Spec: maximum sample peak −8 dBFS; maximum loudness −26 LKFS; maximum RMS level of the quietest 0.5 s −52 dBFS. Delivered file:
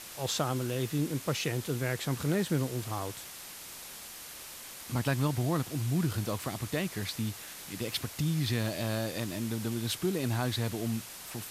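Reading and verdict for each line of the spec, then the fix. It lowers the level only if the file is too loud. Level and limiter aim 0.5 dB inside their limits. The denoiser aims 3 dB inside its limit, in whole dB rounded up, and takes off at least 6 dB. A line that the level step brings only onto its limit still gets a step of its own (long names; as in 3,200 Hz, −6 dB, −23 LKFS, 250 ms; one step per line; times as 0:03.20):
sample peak −16.5 dBFS: in spec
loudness −33.0 LKFS: in spec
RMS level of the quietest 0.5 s −46 dBFS: out of spec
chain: broadband denoise 9 dB, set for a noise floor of −46 dBFS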